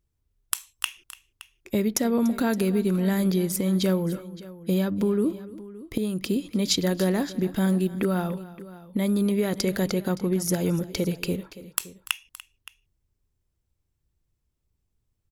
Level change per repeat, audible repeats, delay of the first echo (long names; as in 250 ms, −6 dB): repeats not evenly spaced, 2, 291 ms